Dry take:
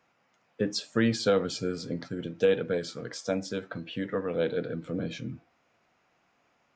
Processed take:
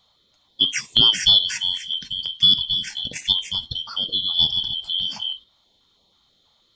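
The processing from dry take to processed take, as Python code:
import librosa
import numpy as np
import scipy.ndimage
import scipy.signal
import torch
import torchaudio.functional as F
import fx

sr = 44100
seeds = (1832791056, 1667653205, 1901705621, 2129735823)

p1 = fx.band_shuffle(x, sr, order='2413')
p2 = fx.peak_eq(p1, sr, hz=600.0, db=-14.5, octaves=1.5, at=(1.75, 2.83))
p3 = fx.level_steps(p2, sr, step_db=13)
p4 = p2 + (p3 * 10.0 ** (0.5 / 20.0))
p5 = fx.filter_held_notch(p4, sr, hz=6.2, low_hz=340.0, high_hz=1500.0)
y = p5 * 10.0 ** (4.5 / 20.0)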